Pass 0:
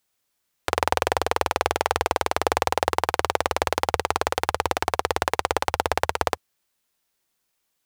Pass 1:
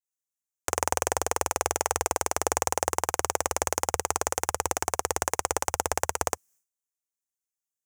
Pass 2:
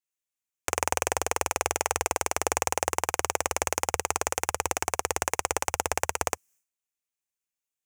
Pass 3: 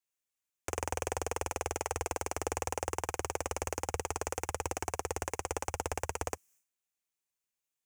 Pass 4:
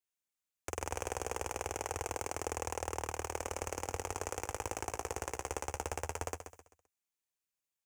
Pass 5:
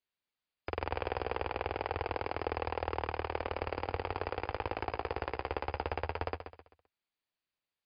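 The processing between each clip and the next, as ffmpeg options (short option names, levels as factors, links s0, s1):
-af "highshelf=f=5200:t=q:w=3:g=8.5,agate=range=0.0224:threshold=0.00251:ratio=3:detection=peak,volume=0.562"
-af "equalizer=f=2500:t=o:w=0.67:g=7,volume=0.891"
-filter_complex "[0:a]acrossover=split=350[s0][s1];[s1]alimiter=limit=0.251:level=0:latency=1:release=14[s2];[s0][s2]amix=inputs=2:normalize=0,asoftclip=type=tanh:threshold=0.119"
-af "aecho=1:1:130|260|390|520:0.355|0.128|0.046|0.0166,volume=0.668"
-af "volume=1.58" -ar 11025 -c:a libmp3lame -b:a 64k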